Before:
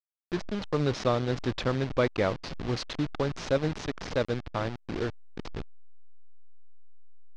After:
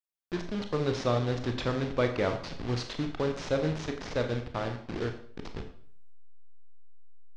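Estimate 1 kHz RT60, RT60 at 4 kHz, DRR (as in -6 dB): 0.55 s, 0.50 s, 5.0 dB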